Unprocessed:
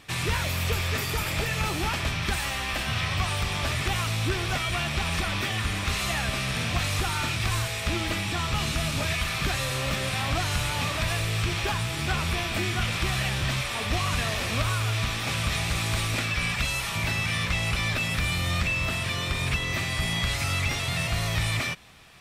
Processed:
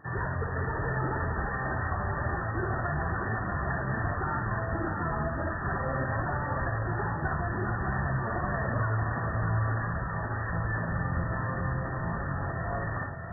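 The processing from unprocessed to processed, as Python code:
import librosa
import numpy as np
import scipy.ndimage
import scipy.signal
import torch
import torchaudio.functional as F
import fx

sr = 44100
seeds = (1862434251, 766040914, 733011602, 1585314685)

p1 = fx.low_shelf(x, sr, hz=120.0, db=-6.0)
p2 = np.clip(p1, -10.0 ** (-23.5 / 20.0), 10.0 ** (-23.5 / 20.0))
p3 = p2 + fx.echo_single(p2, sr, ms=107, db=-3.5, dry=0)
p4 = fx.stretch_vocoder_free(p3, sr, factor=0.6)
p5 = fx.brickwall_lowpass(p4, sr, high_hz=1900.0)
p6 = p5 + 10.0 ** (-6.0 / 20.0) * np.pad(p5, (int(633 * sr / 1000.0), 0))[:len(p5)]
y = F.gain(torch.from_numpy(p6), 2.0).numpy()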